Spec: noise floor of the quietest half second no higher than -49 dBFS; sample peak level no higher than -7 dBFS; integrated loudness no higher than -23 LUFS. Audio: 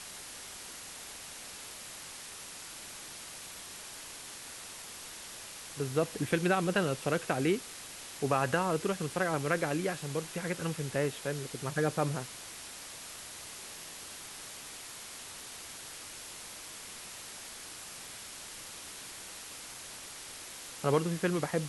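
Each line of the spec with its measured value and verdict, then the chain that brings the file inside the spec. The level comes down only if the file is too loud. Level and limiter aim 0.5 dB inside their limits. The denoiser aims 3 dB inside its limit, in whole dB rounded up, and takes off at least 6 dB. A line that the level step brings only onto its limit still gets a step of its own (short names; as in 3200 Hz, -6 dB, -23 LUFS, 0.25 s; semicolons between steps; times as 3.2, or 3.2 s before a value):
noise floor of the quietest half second -46 dBFS: fail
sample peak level -14.0 dBFS: OK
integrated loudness -36.0 LUFS: OK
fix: denoiser 6 dB, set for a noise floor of -46 dBFS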